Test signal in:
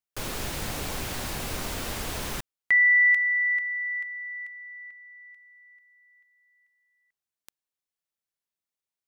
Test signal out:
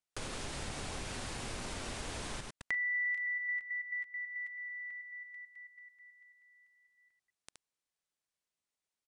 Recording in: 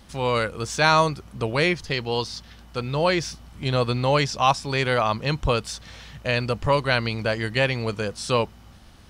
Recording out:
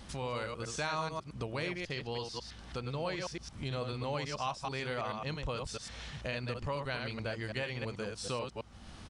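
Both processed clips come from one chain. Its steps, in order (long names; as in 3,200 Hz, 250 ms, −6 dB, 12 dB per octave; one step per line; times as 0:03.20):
delay that plays each chunk backwards 109 ms, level −5 dB
downward compressor 2.5 to 1, threshold −42 dBFS
downsampling to 22,050 Hz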